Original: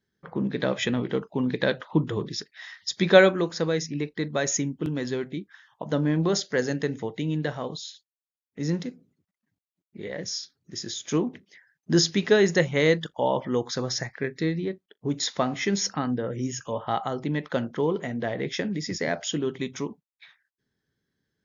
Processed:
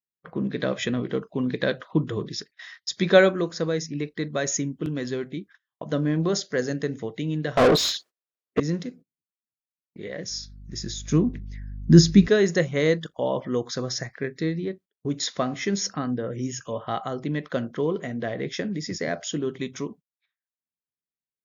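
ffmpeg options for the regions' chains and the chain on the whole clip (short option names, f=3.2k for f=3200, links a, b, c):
-filter_complex "[0:a]asettb=1/sr,asplit=3[a][b][c];[a]atrim=end=7.574[d];[b]atrim=start=7.57:end=8.6,asetpts=PTS-STARTPTS,afade=t=in:d=0.004:c=qsin,afade=t=out:st=1.026:d=0.004:c=qsin,equalizer=f=380:w=0.53:g=13,asplit=2[e][f];[f]highpass=f=720:p=1,volume=32dB,asoftclip=type=tanh:threshold=-9dB[g];[e][g]amix=inputs=2:normalize=0,lowpass=f=3k:p=1,volume=-6dB[h];[c]atrim=start=8.596[i];[d][h]acrossfade=d=0.004:c1=hsin:c2=qsin[j];[j][i]acrossfade=d=0.004:c1=qsin:c2=hsin,asettb=1/sr,asplit=3[k][l][m];[k]atrim=end=10.304[n];[l]atrim=start=10.3:end=12.28,asetpts=PTS-STARTPTS,afade=t=in:d=0.004:c=qsin,afade=t=out:st=1.976:d=0.004:c=qsin,bandreject=f=3.1k:w=9.2,aeval=exprs='val(0)+0.00398*(sin(2*PI*50*n/s)+sin(2*PI*2*50*n/s)/2+sin(2*PI*3*50*n/s)/3+sin(2*PI*4*50*n/s)/4+sin(2*PI*5*50*n/s)/5)':c=same,asubboost=boost=11.5:cutoff=240[o];[m]atrim=start=12.276[p];[n][o]acrossfade=d=0.004:c1=hsin:c2=qsin[q];[q][p]acrossfade=d=0.004:c1=qsin:c2=hsin,adynamicequalizer=threshold=0.00631:dfrequency=2700:dqfactor=1.2:tfrequency=2700:tqfactor=1.2:attack=5:release=100:ratio=0.375:range=2.5:mode=cutabove:tftype=bell,bandreject=f=870:w=5.4,agate=range=-29dB:threshold=-45dB:ratio=16:detection=peak"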